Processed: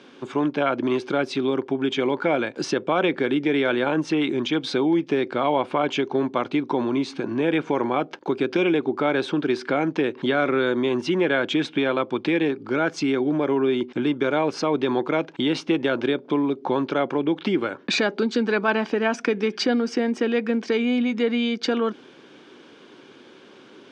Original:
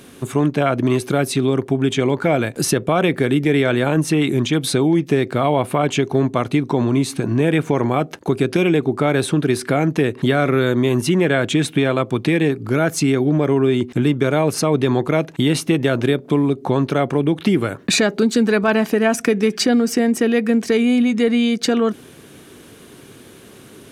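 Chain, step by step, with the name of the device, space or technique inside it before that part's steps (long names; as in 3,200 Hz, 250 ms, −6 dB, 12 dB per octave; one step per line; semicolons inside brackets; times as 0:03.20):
phone earpiece (loudspeaker in its box 380–4,400 Hz, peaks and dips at 440 Hz −5 dB, 670 Hz −8 dB, 1,200 Hz −5 dB, 1,900 Hz −8 dB, 2,700 Hz −5 dB, 4,000 Hz −7 dB)
level +2 dB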